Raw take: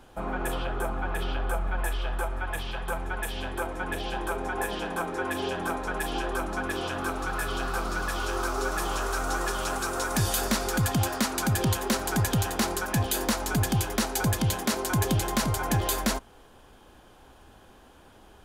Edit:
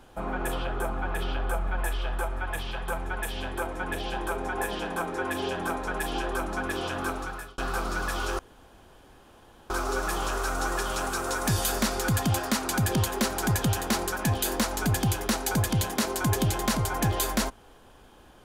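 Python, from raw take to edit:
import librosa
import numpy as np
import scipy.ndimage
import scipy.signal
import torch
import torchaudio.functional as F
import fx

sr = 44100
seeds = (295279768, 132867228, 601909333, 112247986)

y = fx.edit(x, sr, fx.fade_out_span(start_s=7.1, length_s=0.48),
    fx.insert_room_tone(at_s=8.39, length_s=1.31), tone=tone)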